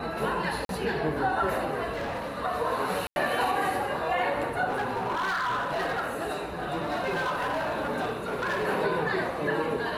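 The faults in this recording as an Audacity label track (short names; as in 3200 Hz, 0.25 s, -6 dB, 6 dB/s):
0.650000	0.690000	gap 42 ms
1.930000	2.380000	clipped -29 dBFS
3.070000	3.160000	gap 91 ms
4.680000	8.670000	clipped -25 dBFS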